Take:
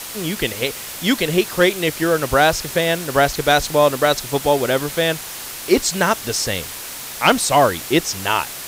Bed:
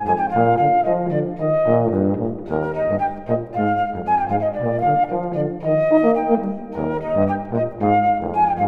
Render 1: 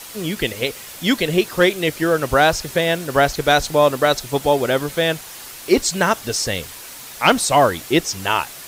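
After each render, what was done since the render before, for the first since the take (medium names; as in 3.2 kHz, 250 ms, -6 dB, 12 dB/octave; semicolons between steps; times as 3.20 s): noise reduction 6 dB, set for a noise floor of -32 dBFS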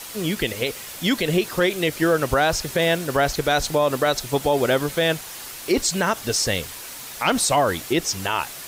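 peak limiter -10 dBFS, peak gain reduction 7 dB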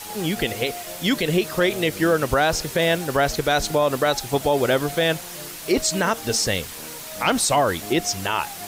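add bed -20 dB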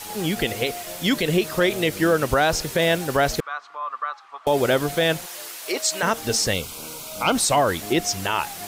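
3.40–4.47 s: ladder band-pass 1.2 kHz, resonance 85%; 5.26–6.03 s: high-pass 560 Hz; 6.53–7.35 s: Butterworth band-stop 1.8 kHz, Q 3.1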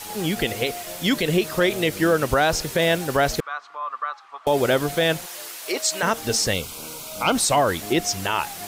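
no audible change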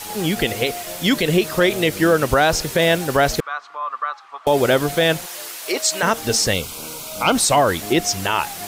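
trim +3.5 dB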